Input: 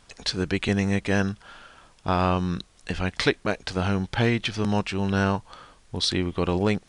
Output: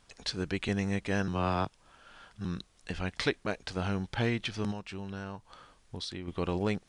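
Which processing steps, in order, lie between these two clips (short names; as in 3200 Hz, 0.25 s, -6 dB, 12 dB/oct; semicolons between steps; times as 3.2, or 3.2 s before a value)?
1.28–2.45 reverse; 4.71–6.28 compressor 6:1, threshold -29 dBFS, peak gain reduction 10.5 dB; gain -7.5 dB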